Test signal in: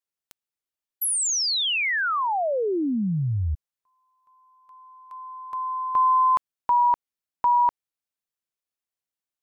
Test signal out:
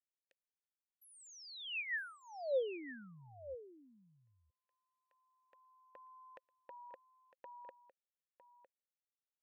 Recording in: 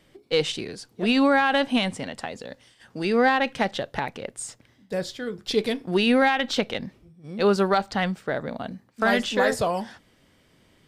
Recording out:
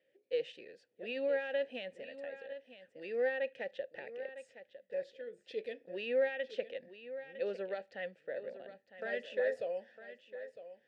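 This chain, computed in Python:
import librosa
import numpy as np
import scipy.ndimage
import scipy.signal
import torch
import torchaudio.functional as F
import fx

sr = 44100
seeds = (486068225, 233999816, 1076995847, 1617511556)

p1 = fx.vowel_filter(x, sr, vowel='e')
p2 = p1 + fx.echo_single(p1, sr, ms=956, db=-13.0, dry=0)
y = p2 * 10.0 ** (-6.0 / 20.0)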